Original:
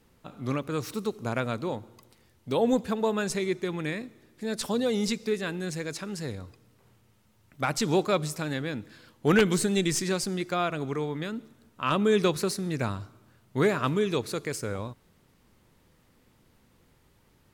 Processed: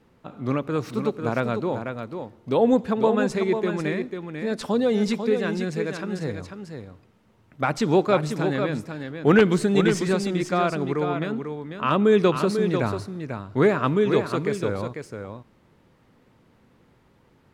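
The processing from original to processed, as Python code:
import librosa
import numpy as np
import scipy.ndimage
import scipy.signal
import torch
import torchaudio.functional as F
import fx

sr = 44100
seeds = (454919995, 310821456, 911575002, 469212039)

y = fx.lowpass(x, sr, hz=1700.0, slope=6)
y = fx.low_shelf(y, sr, hz=63.0, db=-12.0)
y = y + 10.0 ** (-7.0 / 20.0) * np.pad(y, (int(494 * sr / 1000.0), 0))[:len(y)]
y = y * librosa.db_to_amplitude(6.0)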